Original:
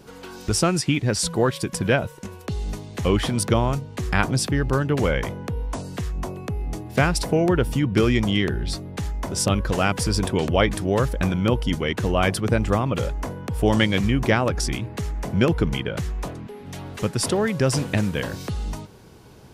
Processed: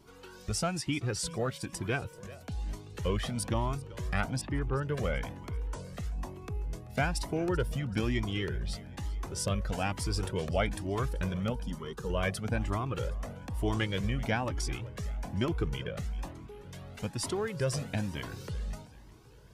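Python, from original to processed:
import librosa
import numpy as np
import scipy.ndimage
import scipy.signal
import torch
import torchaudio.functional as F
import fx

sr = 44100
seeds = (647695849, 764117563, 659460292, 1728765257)

y = fx.lowpass(x, sr, hz=2900.0, slope=24, at=(4.41, 4.83))
y = fx.fixed_phaser(y, sr, hz=460.0, stages=8, at=(11.52, 12.1))
y = fx.echo_feedback(y, sr, ms=385, feedback_pct=50, wet_db=-19.5)
y = fx.comb_cascade(y, sr, direction='rising', hz=1.1)
y = y * 10.0 ** (-6.5 / 20.0)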